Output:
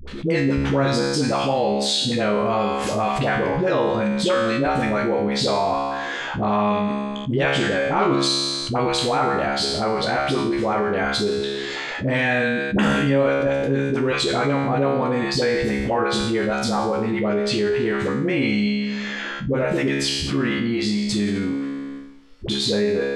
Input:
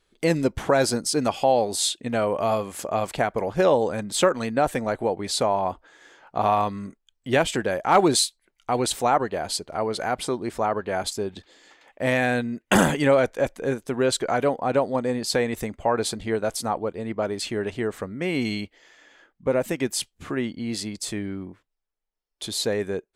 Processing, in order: low-pass 4 kHz 12 dB/octave; peaking EQ 700 Hz -6 dB 1.1 oct; feedback comb 69 Hz, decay 0.8 s, harmonics all, mix 90%; phase dispersion highs, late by 76 ms, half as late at 500 Hz; level flattener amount 70%; trim +8 dB

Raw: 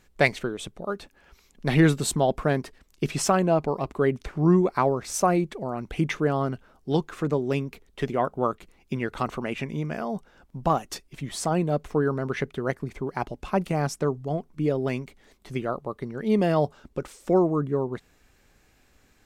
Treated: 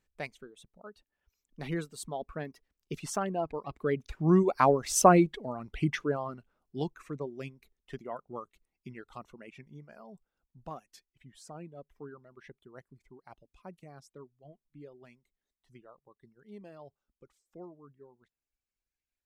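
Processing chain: Doppler pass-by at 5.04 s, 13 m/s, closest 5.5 m; reverb removal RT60 2 s; trim +3 dB

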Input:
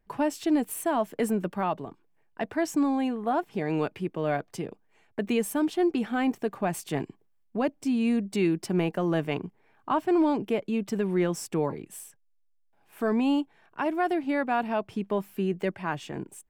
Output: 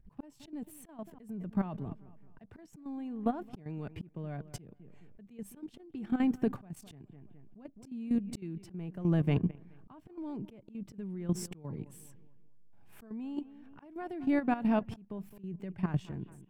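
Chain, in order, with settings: fade out at the end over 0.58 s; compression 6:1, threshold -26 dBFS, peak gain reduction 7 dB; tone controls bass +15 dB, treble -1 dB; on a send: bucket-brigade echo 213 ms, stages 4096, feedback 33%, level -19.5 dB; on the sum: slow attack 681 ms; bass shelf 290 Hz +3.5 dB; level held to a coarse grid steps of 13 dB

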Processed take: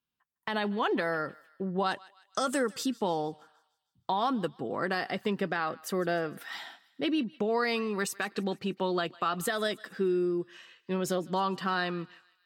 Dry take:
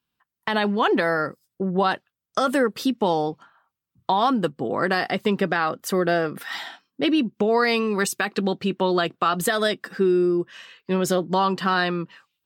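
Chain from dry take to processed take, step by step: 1.86–2.86 s: peaking EQ 7.4 kHz +13 dB 0.9 oct; on a send: thinning echo 154 ms, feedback 54%, high-pass 1.1 kHz, level -20 dB; on the sum: trim -8.5 dB

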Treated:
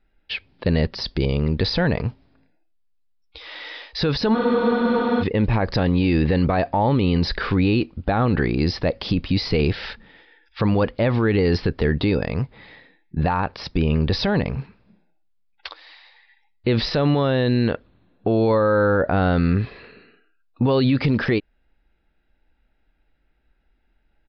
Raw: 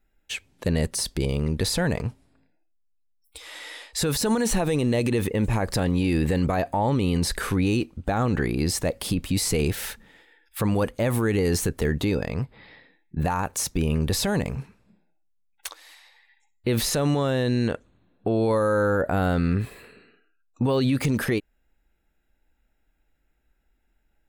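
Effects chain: resampled via 11.025 kHz; spectral freeze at 4.37 s, 0.85 s; trim +4 dB

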